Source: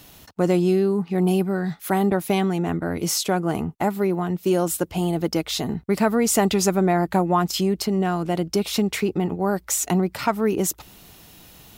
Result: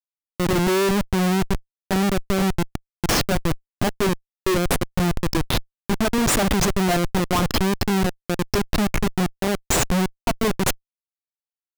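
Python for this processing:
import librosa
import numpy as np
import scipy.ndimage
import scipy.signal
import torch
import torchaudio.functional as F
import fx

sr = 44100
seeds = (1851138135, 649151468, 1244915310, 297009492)

y = fx.bin_expand(x, sr, power=2.0)
y = fx.schmitt(y, sr, flips_db=-25.5)
y = y * 10.0 ** (8.5 / 20.0)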